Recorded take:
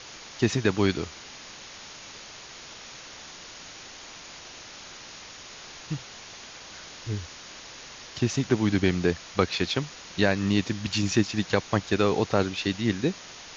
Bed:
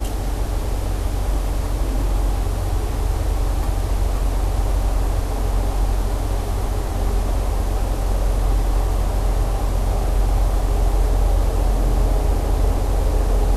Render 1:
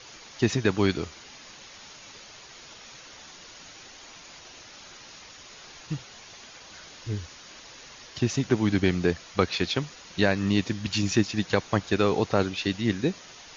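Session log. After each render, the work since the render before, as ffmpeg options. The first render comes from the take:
ffmpeg -i in.wav -af "afftdn=noise_reduction=6:noise_floor=-45" out.wav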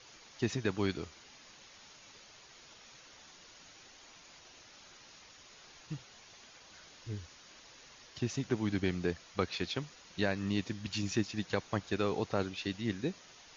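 ffmpeg -i in.wav -af "volume=-9.5dB" out.wav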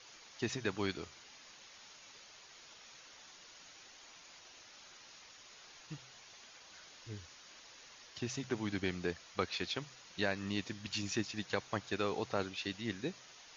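ffmpeg -i in.wav -af "lowshelf=frequency=420:gain=-7,bandreject=frequency=64.32:width_type=h:width=4,bandreject=frequency=128.64:width_type=h:width=4" out.wav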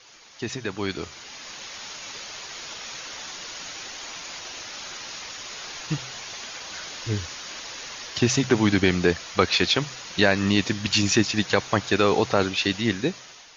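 ffmpeg -i in.wav -filter_complex "[0:a]asplit=2[link_01][link_02];[link_02]alimiter=level_in=3.5dB:limit=-24dB:level=0:latency=1:release=16,volume=-3.5dB,volume=-0.5dB[link_03];[link_01][link_03]amix=inputs=2:normalize=0,dynaudnorm=framelen=800:gausssize=3:maxgain=14dB" out.wav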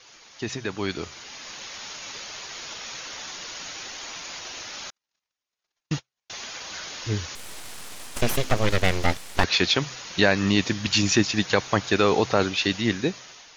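ffmpeg -i in.wav -filter_complex "[0:a]asettb=1/sr,asplit=3[link_01][link_02][link_03];[link_01]atrim=end=4.904[link_04];[link_02]atrim=start=4.9:end=6.3,asetpts=PTS-STARTPTS,afade=type=in:duration=0.004:curve=qsin,afade=type=out:start_time=1.396:duration=0.004:curve=qsin,agate=range=-53dB:threshold=-32dB:ratio=16:release=100:detection=peak[link_05];[link_03]atrim=start=6.296[link_06];[link_04][link_05]acrossfade=duration=0.004:curve1=hsin:curve2=qsin[link_07];[link_07][link_06]acrossfade=duration=0.004:curve1=qsin:curve2=hsin,asettb=1/sr,asplit=3[link_08][link_09][link_10];[link_08]atrim=end=7.354[link_11];[link_09]atrim=start=7.35:end=9.44,asetpts=PTS-STARTPTS,afade=type=in:duration=0.004:curve=qsin,afade=type=out:start_time=2.086:duration=0.004:curve=qsin,aeval=exprs='abs(val(0))':channel_layout=same[link_12];[link_10]atrim=start=9.436[link_13];[link_11][link_12]acrossfade=duration=0.004:curve1=hsin:curve2=qsin[link_14];[link_14][link_13]acrossfade=duration=0.004:curve1=qsin:curve2=hsin" out.wav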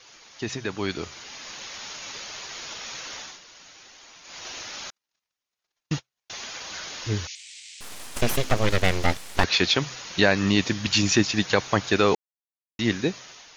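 ffmpeg -i in.wav -filter_complex "[0:a]asettb=1/sr,asplit=3[link_01][link_02][link_03];[link_01]atrim=end=7.274[link_04];[link_02]atrim=start=7.27:end=7.81,asetpts=PTS-STARTPTS,afade=type=in:duration=0.004:curve=qsin,afade=type=out:start_time=0.536:duration=0.004:curve=qsin,asuperpass=centerf=4300:order=12:qfactor=0.69[link_05];[link_03]atrim=start=7.806[link_06];[link_04][link_05]acrossfade=duration=0.004:curve1=hsin:curve2=qsin[link_07];[link_07][link_06]acrossfade=duration=0.004:curve1=qsin:curve2=hsin,asplit=5[link_08][link_09][link_10][link_11][link_12];[link_08]atrim=end=3.41,asetpts=PTS-STARTPTS,afade=type=out:start_time=3.16:duration=0.25:silence=0.251189[link_13];[link_09]atrim=start=3.41:end=4.23,asetpts=PTS-STARTPTS,volume=-12dB[link_14];[link_10]atrim=start=4.23:end=12.15,asetpts=PTS-STARTPTS,afade=type=in:duration=0.25:silence=0.251189,afade=type=out:start_time=7.916:duration=0.004:curve=hsin[link_15];[link_11]atrim=start=12.15:end=12.79,asetpts=PTS-STARTPTS,volume=0[link_16];[link_12]atrim=start=12.79,asetpts=PTS-STARTPTS,afade=type=in:duration=0.004:curve=hsin[link_17];[link_13][link_14][link_15][link_16][link_17]concat=n=5:v=0:a=1" out.wav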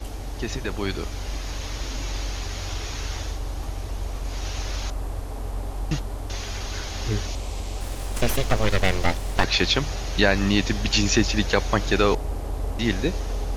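ffmpeg -i in.wav -i bed.wav -filter_complex "[1:a]volume=-10dB[link_01];[0:a][link_01]amix=inputs=2:normalize=0" out.wav

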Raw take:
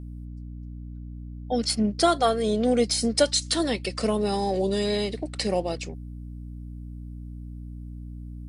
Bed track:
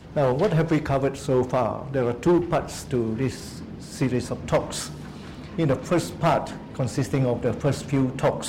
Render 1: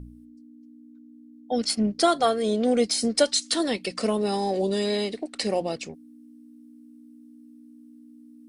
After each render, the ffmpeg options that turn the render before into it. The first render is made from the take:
ffmpeg -i in.wav -af "bandreject=frequency=60:width_type=h:width=4,bandreject=frequency=120:width_type=h:width=4,bandreject=frequency=180:width_type=h:width=4" out.wav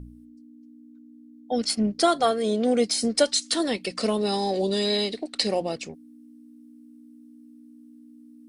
ffmpeg -i in.wav -filter_complex "[0:a]asettb=1/sr,asplit=3[link_01][link_02][link_03];[link_01]atrim=end=2.314[link_04];[link_02]atrim=start=2.31:end=3.01,asetpts=PTS-STARTPTS,afade=type=in:duration=0.004:curve=qsin,afade=type=out:start_time=0.696:duration=0.004:curve=qsin,highpass=95[link_05];[link_03]atrim=start=3.006[link_06];[link_04][link_05]acrossfade=duration=0.004:curve1=hsin:curve2=qsin[link_07];[link_07][link_06]acrossfade=duration=0.004:curve1=qsin:curve2=hsin,asettb=1/sr,asplit=3[link_08][link_09][link_10];[link_08]atrim=end=3.994[link_11];[link_09]atrim=start=3.99:end=5.55,asetpts=PTS-STARTPTS,afade=type=in:duration=0.004:curve=qsin,afade=type=out:start_time=1.556:duration=0.004:curve=qsin,equalizer=frequency=4100:width_type=o:width=0.68:gain=7.5[link_12];[link_10]atrim=start=5.546[link_13];[link_11][link_12]acrossfade=duration=0.004:curve1=hsin:curve2=qsin[link_14];[link_14][link_13]acrossfade=duration=0.004:curve1=qsin:curve2=hsin" out.wav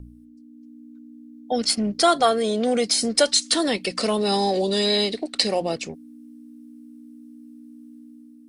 ffmpeg -i in.wav -filter_complex "[0:a]acrossover=split=610|1300[link_01][link_02][link_03];[link_01]alimiter=limit=-23.5dB:level=0:latency=1[link_04];[link_04][link_02][link_03]amix=inputs=3:normalize=0,dynaudnorm=framelen=160:gausssize=7:maxgain=5dB" out.wav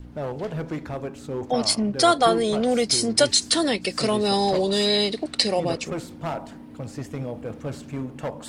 ffmpeg -i in.wav -i bed.wav -filter_complex "[1:a]volume=-9dB[link_01];[0:a][link_01]amix=inputs=2:normalize=0" out.wav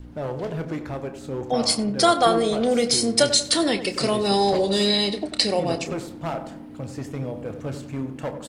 ffmpeg -i in.wav -filter_complex "[0:a]asplit=2[link_01][link_02];[link_02]adelay=30,volume=-11.5dB[link_03];[link_01][link_03]amix=inputs=2:normalize=0,asplit=2[link_04][link_05];[link_05]adelay=93,lowpass=frequency=1400:poles=1,volume=-10dB,asplit=2[link_06][link_07];[link_07]adelay=93,lowpass=frequency=1400:poles=1,volume=0.47,asplit=2[link_08][link_09];[link_09]adelay=93,lowpass=frequency=1400:poles=1,volume=0.47,asplit=2[link_10][link_11];[link_11]adelay=93,lowpass=frequency=1400:poles=1,volume=0.47,asplit=2[link_12][link_13];[link_13]adelay=93,lowpass=frequency=1400:poles=1,volume=0.47[link_14];[link_04][link_06][link_08][link_10][link_12][link_14]amix=inputs=6:normalize=0" out.wav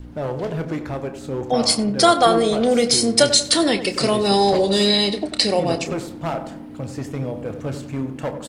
ffmpeg -i in.wav -af "volume=3.5dB,alimiter=limit=-2dB:level=0:latency=1" out.wav

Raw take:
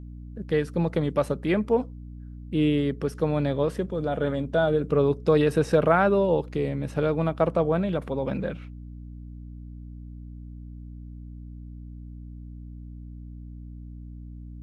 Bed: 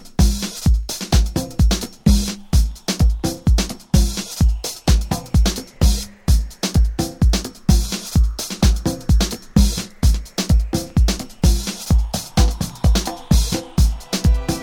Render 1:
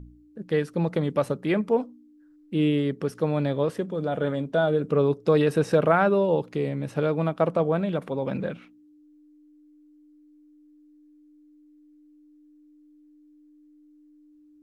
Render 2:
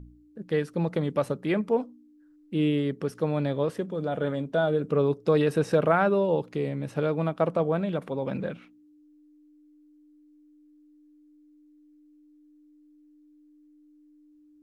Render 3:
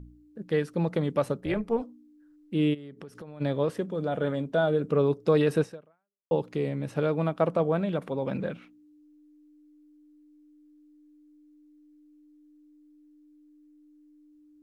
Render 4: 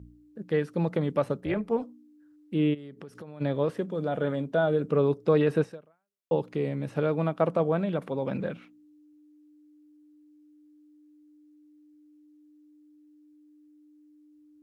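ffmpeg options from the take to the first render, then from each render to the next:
ffmpeg -i in.wav -af "bandreject=frequency=60:width_type=h:width=4,bandreject=frequency=120:width_type=h:width=4,bandreject=frequency=180:width_type=h:width=4,bandreject=frequency=240:width_type=h:width=4" out.wav
ffmpeg -i in.wav -af "volume=-2dB" out.wav
ffmpeg -i in.wav -filter_complex "[0:a]asettb=1/sr,asplit=3[link_01][link_02][link_03];[link_01]atrim=end=1.404[link_04];[link_02]atrim=start=1.4:end=1.82,asetpts=PTS-STARTPTS,afade=type=in:duration=0.004:curve=qsin,afade=type=out:start_time=0.416:duration=0.004:curve=qsin,tremolo=f=230:d=0.621[link_05];[link_03]atrim=start=1.816[link_06];[link_04][link_05]acrossfade=duration=0.004:curve1=hsin:curve2=qsin[link_07];[link_07][link_06]acrossfade=duration=0.004:curve1=qsin:curve2=hsin,asplit=3[link_08][link_09][link_10];[link_08]afade=type=out:start_time=2.73:duration=0.02[link_11];[link_09]acompressor=threshold=-39dB:ratio=12:attack=3.2:release=140:knee=1:detection=peak,afade=type=in:start_time=2.73:duration=0.02,afade=type=out:start_time=3.4:duration=0.02[link_12];[link_10]afade=type=in:start_time=3.4:duration=0.02[link_13];[link_11][link_12][link_13]amix=inputs=3:normalize=0,asplit=2[link_14][link_15];[link_14]atrim=end=6.31,asetpts=PTS-STARTPTS,afade=type=out:start_time=5.61:duration=0.7:curve=exp[link_16];[link_15]atrim=start=6.31,asetpts=PTS-STARTPTS,afade=type=in:duration=0.004:curve=hsin[link_17];[link_16][link_17]concat=n=2:v=0:a=1" out.wav
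ffmpeg -i in.wav -filter_complex "[0:a]acrossover=split=3300[link_01][link_02];[link_02]acompressor=threshold=-55dB:ratio=4:attack=1:release=60[link_03];[link_01][link_03]amix=inputs=2:normalize=0,highpass=60" out.wav

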